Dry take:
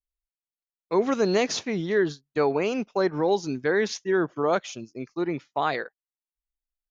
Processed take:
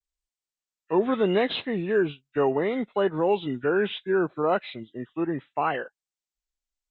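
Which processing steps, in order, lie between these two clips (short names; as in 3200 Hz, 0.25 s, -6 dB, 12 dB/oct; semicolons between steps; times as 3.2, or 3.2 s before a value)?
nonlinear frequency compression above 1300 Hz 1.5:1; vibrato 0.73 Hz 73 cents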